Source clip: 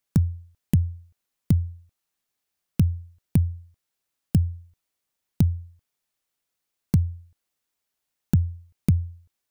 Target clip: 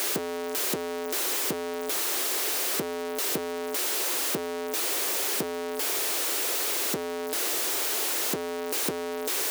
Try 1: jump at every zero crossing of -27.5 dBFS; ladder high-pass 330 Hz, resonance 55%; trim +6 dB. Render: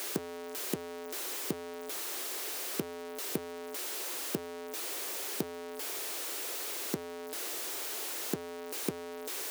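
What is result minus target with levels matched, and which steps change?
jump at every zero crossing: distortion -8 dB
change: jump at every zero crossing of -17.5 dBFS

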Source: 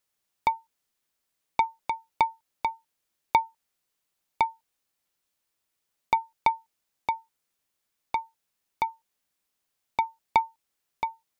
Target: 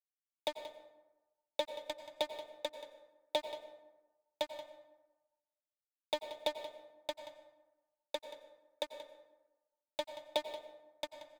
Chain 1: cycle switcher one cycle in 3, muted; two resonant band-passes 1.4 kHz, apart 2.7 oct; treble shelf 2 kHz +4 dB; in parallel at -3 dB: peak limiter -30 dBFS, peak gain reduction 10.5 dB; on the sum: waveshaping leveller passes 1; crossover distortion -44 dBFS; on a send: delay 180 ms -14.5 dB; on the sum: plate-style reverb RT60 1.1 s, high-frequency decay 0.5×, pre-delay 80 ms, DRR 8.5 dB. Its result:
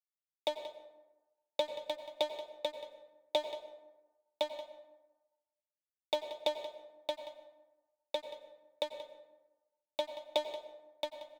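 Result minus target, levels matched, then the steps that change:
crossover distortion: distortion -9 dB
change: crossover distortion -34 dBFS

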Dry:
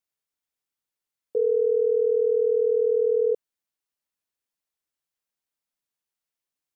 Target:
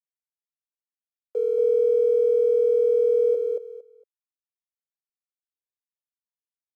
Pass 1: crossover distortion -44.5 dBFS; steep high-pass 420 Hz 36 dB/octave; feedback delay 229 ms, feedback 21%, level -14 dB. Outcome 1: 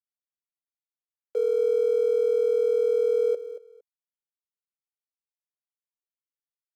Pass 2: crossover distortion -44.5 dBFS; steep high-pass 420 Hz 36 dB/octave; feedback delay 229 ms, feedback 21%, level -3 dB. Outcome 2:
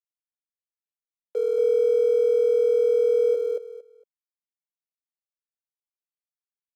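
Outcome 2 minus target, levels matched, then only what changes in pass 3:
crossover distortion: distortion +11 dB
change: crossover distortion -55.5 dBFS

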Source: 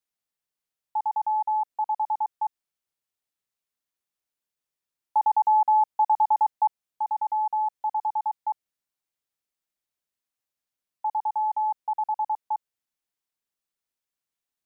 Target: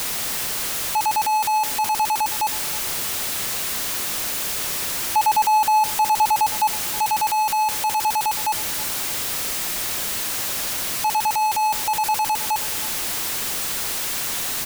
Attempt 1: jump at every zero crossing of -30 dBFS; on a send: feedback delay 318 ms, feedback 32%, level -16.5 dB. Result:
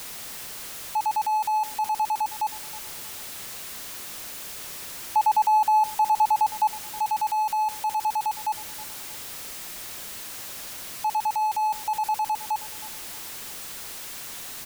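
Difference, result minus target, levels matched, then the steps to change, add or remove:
jump at every zero crossing: distortion -9 dB
change: jump at every zero crossing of -18 dBFS

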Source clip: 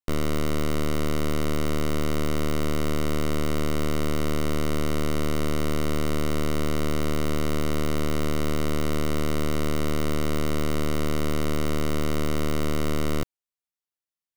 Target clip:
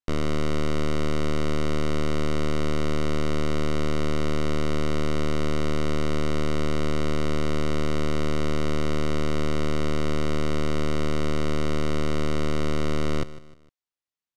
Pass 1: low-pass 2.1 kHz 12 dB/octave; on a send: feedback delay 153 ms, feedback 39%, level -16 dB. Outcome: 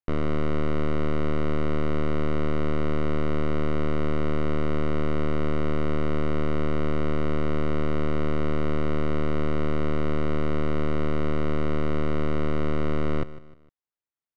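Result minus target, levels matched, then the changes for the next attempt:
8 kHz band -17.5 dB
change: low-pass 6.4 kHz 12 dB/octave

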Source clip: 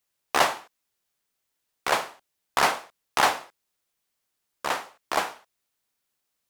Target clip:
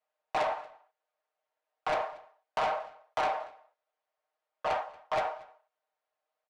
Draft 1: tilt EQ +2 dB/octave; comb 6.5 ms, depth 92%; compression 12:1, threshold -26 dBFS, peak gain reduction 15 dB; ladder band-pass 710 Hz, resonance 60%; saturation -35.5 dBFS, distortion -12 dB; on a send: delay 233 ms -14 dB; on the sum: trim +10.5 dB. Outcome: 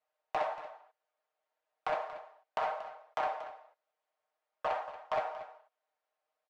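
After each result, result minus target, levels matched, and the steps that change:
compression: peak gain reduction +8 dB; echo-to-direct +9.5 dB
change: compression 12:1, threshold -17.5 dBFS, peak gain reduction 7 dB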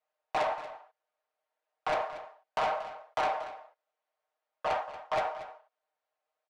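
echo-to-direct +9.5 dB
change: delay 233 ms -23.5 dB

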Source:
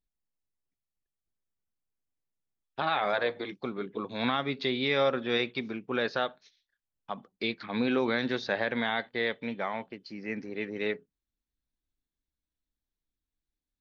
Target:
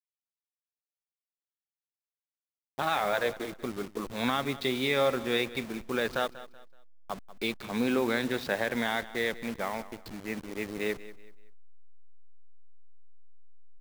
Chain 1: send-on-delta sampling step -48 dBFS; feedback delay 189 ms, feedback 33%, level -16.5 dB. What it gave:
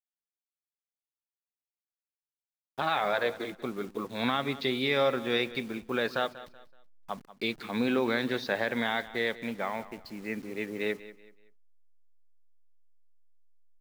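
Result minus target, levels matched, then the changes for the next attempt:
send-on-delta sampling: distortion -12 dB
change: send-on-delta sampling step -37.5 dBFS

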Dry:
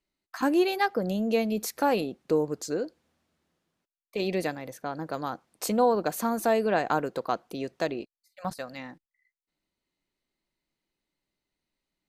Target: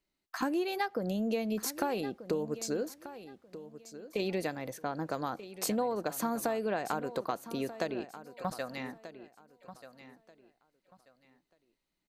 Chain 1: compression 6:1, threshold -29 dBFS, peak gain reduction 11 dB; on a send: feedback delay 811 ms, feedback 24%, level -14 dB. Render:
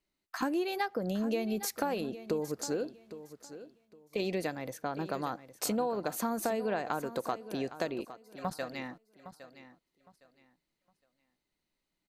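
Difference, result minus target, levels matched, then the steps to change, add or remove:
echo 425 ms early
change: feedback delay 1236 ms, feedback 24%, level -14 dB

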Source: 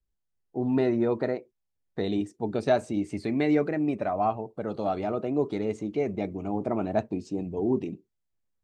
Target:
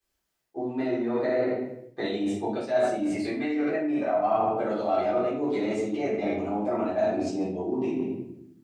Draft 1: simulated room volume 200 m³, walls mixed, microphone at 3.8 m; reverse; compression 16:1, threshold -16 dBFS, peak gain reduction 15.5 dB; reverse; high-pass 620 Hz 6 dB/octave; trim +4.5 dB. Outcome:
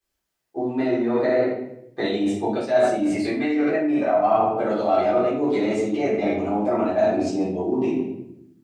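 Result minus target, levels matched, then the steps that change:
compression: peak gain reduction -5.5 dB
change: compression 16:1, threshold -22 dBFS, peak gain reduction 21.5 dB

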